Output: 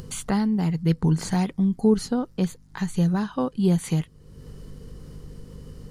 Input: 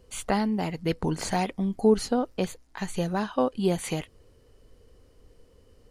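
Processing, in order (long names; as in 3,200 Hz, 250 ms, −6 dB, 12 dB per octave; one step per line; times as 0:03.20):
mains hum 50 Hz, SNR 31 dB
graphic EQ with 15 bands 160 Hz +11 dB, 630 Hz −7 dB, 2,500 Hz −5 dB
upward compression, threshold −27 dBFS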